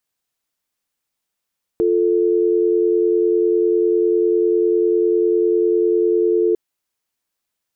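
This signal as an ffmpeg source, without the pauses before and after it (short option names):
-f lavfi -i "aevalsrc='0.158*(sin(2*PI*350*t)+sin(2*PI*440*t))':d=4.75:s=44100"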